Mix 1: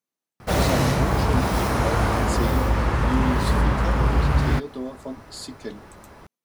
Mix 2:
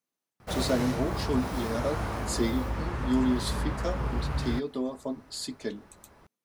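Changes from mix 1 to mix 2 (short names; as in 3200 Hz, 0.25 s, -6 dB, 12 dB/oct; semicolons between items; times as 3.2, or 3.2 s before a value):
speech: send +6.5 dB; background -11.0 dB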